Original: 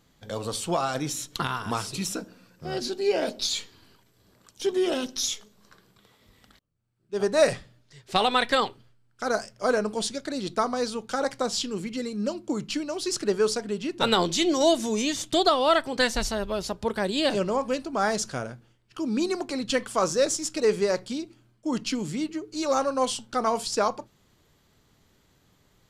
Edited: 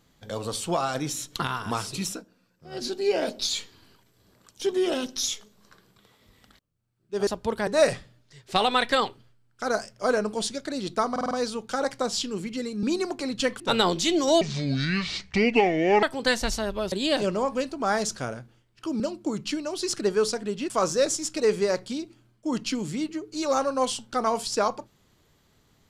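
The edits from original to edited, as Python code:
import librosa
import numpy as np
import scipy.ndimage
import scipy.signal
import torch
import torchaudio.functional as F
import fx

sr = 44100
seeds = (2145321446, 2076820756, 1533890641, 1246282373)

y = fx.edit(x, sr, fx.fade_down_up(start_s=2.08, length_s=0.77, db=-11.5, fade_s=0.15),
    fx.stutter(start_s=10.71, slice_s=0.05, count=5),
    fx.swap(start_s=12.23, length_s=1.7, other_s=19.13, other_length_s=0.77),
    fx.speed_span(start_s=14.74, length_s=1.02, speed=0.63),
    fx.move(start_s=16.65, length_s=0.4, to_s=7.27), tone=tone)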